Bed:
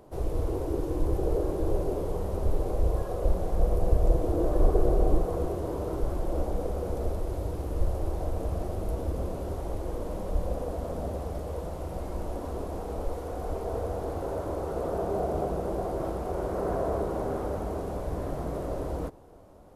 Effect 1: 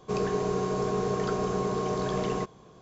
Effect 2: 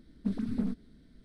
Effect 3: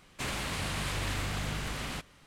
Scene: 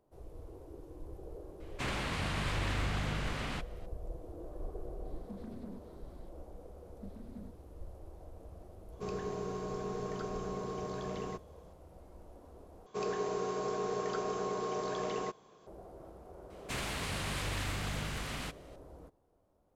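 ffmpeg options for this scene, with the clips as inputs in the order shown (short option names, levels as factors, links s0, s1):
-filter_complex "[3:a]asplit=2[s0][s1];[2:a]asplit=2[s2][s3];[1:a]asplit=2[s4][s5];[0:a]volume=0.1[s6];[s0]aemphasis=mode=reproduction:type=50kf[s7];[s2]acompressor=threshold=0.00794:ratio=6:attack=3.2:release=140:knee=1:detection=peak[s8];[s5]bass=f=250:g=-11,treble=f=4000:g=0[s9];[s6]asplit=2[s10][s11];[s10]atrim=end=12.864[s12];[s9]atrim=end=2.81,asetpts=PTS-STARTPTS,volume=0.562[s13];[s11]atrim=start=15.666[s14];[s7]atrim=end=2.26,asetpts=PTS-STARTPTS,afade=t=in:d=0.004:c=hsin,afade=t=out:st=2.256:d=0.004:c=hsin,adelay=1600[s15];[s8]atrim=end=1.24,asetpts=PTS-STARTPTS,volume=0.891,afade=t=in:d=0.004:c=hsin,afade=t=out:st=1.236:d=0.004:c=hsin,adelay=222705S[s16];[s3]atrim=end=1.24,asetpts=PTS-STARTPTS,volume=0.133,afade=t=in:d=0.004:c=hsin,afade=t=out:st=1.236:d=0.004:c=hsin,adelay=6770[s17];[s4]atrim=end=2.81,asetpts=PTS-STARTPTS,volume=0.299,afade=t=in:d=0.004:c=hsin,afade=t=out:st=2.806:d=0.004:c=hsin,adelay=8920[s18];[s1]atrim=end=2.26,asetpts=PTS-STARTPTS,volume=0.708,afade=t=in:d=0.004:c=hsin,afade=t=out:st=2.256:d=0.004:c=hsin,adelay=16500[s19];[s12][s13]acrossfade=d=0.004:c1=hsin:c2=hsin[s20];[s20][s14]acrossfade=d=0.004:c1=hsin:c2=hsin[s21];[s21][s15][s16][s17][s18][s19]amix=inputs=6:normalize=0"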